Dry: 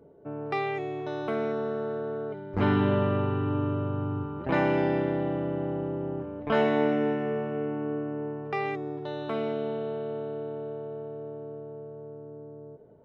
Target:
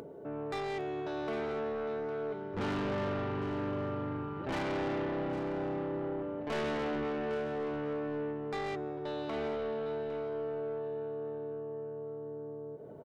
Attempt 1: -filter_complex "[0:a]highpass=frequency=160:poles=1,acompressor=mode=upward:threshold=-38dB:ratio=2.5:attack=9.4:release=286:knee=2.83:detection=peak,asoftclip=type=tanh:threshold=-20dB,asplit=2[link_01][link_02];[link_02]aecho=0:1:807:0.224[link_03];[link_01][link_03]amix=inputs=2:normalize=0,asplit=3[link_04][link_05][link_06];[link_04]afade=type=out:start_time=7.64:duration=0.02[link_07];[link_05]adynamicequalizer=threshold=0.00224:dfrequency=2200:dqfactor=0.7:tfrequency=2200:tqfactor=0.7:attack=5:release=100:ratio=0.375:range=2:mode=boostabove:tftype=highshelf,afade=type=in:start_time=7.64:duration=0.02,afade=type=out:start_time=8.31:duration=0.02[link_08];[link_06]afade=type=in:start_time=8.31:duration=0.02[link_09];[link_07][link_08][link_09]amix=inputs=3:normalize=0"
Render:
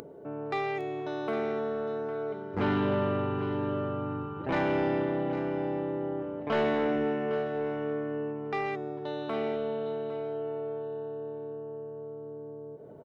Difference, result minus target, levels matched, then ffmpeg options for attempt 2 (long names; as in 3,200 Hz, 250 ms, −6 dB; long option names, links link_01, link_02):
soft clipping: distortion −10 dB
-filter_complex "[0:a]highpass=frequency=160:poles=1,acompressor=mode=upward:threshold=-38dB:ratio=2.5:attack=9.4:release=286:knee=2.83:detection=peak,asoftclip=type=tanh:threshold=-31.5dB,asplit=2[link_01][link_02];[link_02]aecho=0:1:807:0.224[link_03];[link_01][link_03]amix=inputs=2:normalize=0,asplit=3[link_04][link_05][link_06];[link_04]afade=type=out:start_time=7.64:duration=0.02[link_07];[link_05]adynamicequalizer=threshold=0.00224:dfrequency=2200:dqfactor=0.7:tfrequency=2200:tqfactor=0.7:attack=5:release=100:ratio=0.375:range=2:mode=boostabove:tftype=highshelf,afade=type=in:start_time=7.64:duration=0.02,afade=type=out:start_time=8.31:duration=0.02[link_08];[link_06]afade=type=in:start_time=8.31:duration=0.02[link_09];[link_07][link_08][link_09]amix=inputs=3:normalize=0"